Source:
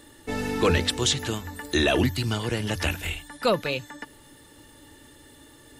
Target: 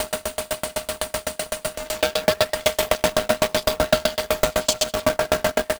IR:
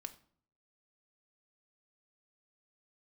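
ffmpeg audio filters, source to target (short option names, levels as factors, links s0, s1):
-filter_complex "[0:a]areverse,equalizer=f=125:t=o:w=0.33:g=-11,equalizer=f=250:t=o:w=0.33:g=-6,equalizer=f=400:t=o:w=0.33:g=9,equalizer=f=4000:t=o:w=0.33:g=7,asplit=6[s0][s1][s2][s3][s4][s5];[s1]adelay=103,afreqshift=61,volume=0.473[s6];[s2]adelay=206,afreqshift=122,volume=0.184[s7];[s3]adelay=309,afreqshift=183,volume=0.0716[s8];[s4]adelay=412,afreqshift=244,volume=0.0282[s9];[s5]adelay=515,afreqshift=305,volume=0.011[s10];[s0][s6][s7][s8][s9][s10]amix=inputs=6:normalize=0,acrossover=split=4000[s11][s12];[s11]aeval=exprs='abs(val(0))':c=same[s13];[s13][s12]amix=inputs=2:normalize=0,aeval=exprs='val(0)*sin(2*PI*620*n/s)':c=same,equalizer=f=66:t=o:w=0.85:g=6.5,aecho=1:1:4.4:0.41,acrusher=bits=2:mode=log:mix=0:aa=0.000001,acompressor=threshold=0.0112:ratio=12,alimiter=level_in=42.2:limit=0.891:release=50:level=0:latency=1,aeval=exprs='val(0)*pow(10,-36*if(lt(mod(7.9*n/s,1),2*abs(7.9)/1000),1-mod(7.9*n/s,1)/(2*abs(7.9)/1000),(mod(7.9*n/s,1)-2*abs(7.9)/1000)/(1-2*abs(7.9)/1000))/20)':c=same"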